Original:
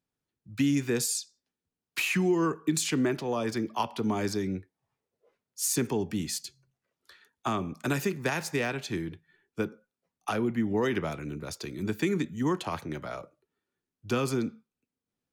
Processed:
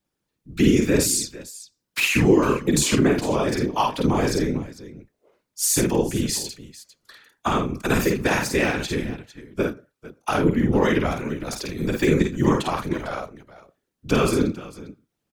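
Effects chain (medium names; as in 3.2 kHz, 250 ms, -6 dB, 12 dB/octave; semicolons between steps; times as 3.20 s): multi-tap echo 50/81/451 ms -3.5/-15/-16.5 dB; whisper effect; trim +6.5 dB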